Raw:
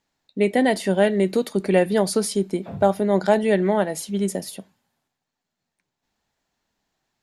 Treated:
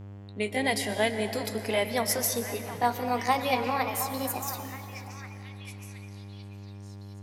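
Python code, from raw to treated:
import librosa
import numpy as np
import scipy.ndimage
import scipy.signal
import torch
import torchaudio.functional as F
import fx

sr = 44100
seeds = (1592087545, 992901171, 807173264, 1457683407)

y = fx.pitch_glide(x, sr, semitones=8.5, runs='starting unshifted')
y = fx.tilt_shelf(y, sr, db=-7.0, hz=970.0)
y = fx.dmg_buzz(y, sr, base_hz=100.0, harmonics=35, level_db=-37.0, tilt_db=-9, odd_only=False)
y = fx.echo_stepped(y, sr, ms=718, hz=1100.0, octaves=0.7, feedback_pct=70, wet_db=-8.5)
y = fx.rev_plate(y, sr, seeds[0], rt60_s=3.1, hf_ratio=0.5, predelay_ms=105, drr_db=8.5)
y = y * librosa.db_to_amplitude(-5.5)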